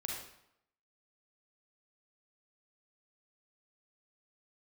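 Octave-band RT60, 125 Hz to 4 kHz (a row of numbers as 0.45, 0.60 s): 0.70, 0.75, 0.75, 0.80, 0.70, 0.60 s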